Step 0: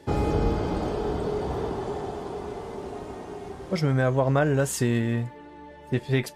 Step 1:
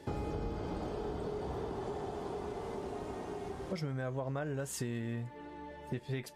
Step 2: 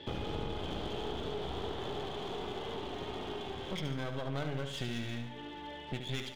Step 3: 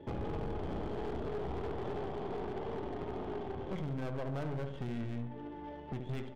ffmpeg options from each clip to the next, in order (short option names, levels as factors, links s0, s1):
-af "acompressor=threshold=0.02:ratio=4,volume=0.75"
-af "lowpass=f=3300:t=q:w=9.1,aeval=exprs='clip(val(0),-1,0.00708)':c=same,aecho=1:1:72|144|216|288|360|432:0.422|0.223|0.118|0.0628|0.0333|0.0176,volume=1.12"
-af "adynamicsmooth=sensitivity=3:basefreq=720,asoftclip=type=hard:threshold=0.02,volume=1.33"